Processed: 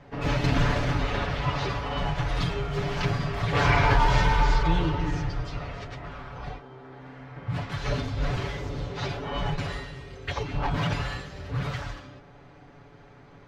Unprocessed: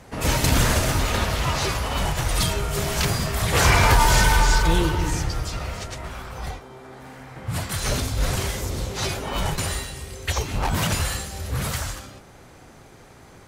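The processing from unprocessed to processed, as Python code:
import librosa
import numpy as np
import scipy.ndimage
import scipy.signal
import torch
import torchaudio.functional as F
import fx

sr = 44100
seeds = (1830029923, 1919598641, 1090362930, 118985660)

y = fx.air_absorb(x, sr, metres=230.0)
y = y + 0.67 * np.pad(y, (int(7.0 * sr / 1000.0), 0))[:len(y)]
y = y * 10.0 ** (-4.0 / 20.0)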